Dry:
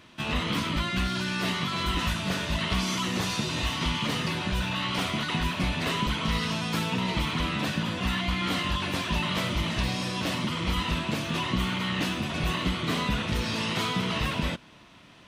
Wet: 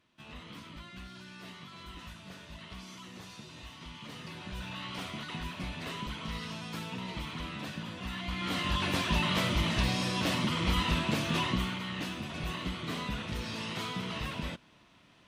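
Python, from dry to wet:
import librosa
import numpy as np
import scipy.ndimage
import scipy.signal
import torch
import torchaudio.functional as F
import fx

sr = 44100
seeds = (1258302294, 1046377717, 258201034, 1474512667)

y = fx.gain(x, sr, db=fx.line((3.87, -19.0), (4.7, -11.0), (8.1, -11.0), (8.83, -1.0), (11.42, -1.0), (11.83, -8.5)))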